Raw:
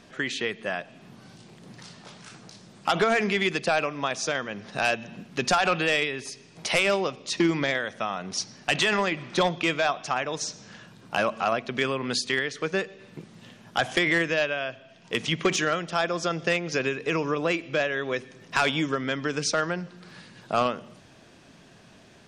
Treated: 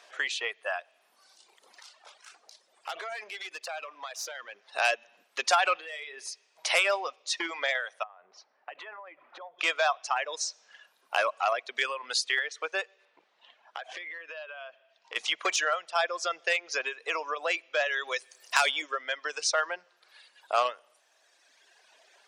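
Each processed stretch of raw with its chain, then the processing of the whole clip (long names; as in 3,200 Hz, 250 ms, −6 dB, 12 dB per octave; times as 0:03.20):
0:01.79–0:04.71: downward compressor 5 to 1, threshold −27 dBFS + tube saturation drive 27 dB, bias 0.6
0:05.77–0:06.28: low shelf with overshoot 210 Hz −12 dB, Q 1.5 + downward compressor 20 to 1, threshold −29 dBFS + double-tracking delay 37 ms −13 dB
0:08.03–0:09.59: low-pass filter 1,400 Hz + downward compressor 16 to 1, threshold −35 dBFS
0:13.05–0:15.16: low-pass filter 3,800 Hz + downward compressor 16 to 1, threshold −33 dBFS
0:17.86–0:18.82: high-shelf EQ 7,000 Hz +10.5 dB + multiband upward and downward compressor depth 40%
whole clip: reverb reduction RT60 1.9 s; high-pass filter 570 Hz 24 dB per octave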